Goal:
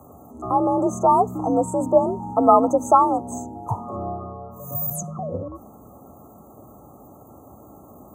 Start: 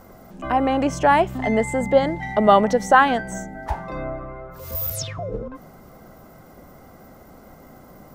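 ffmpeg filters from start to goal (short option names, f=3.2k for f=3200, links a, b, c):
-af "afftfilt=real='re*(1-between(b*sr/4096,1300,6000))':imag='im*(1-between(b*sr/4096,1300,6000))':win_size=4096:overlap=0.75,afreqshift=54"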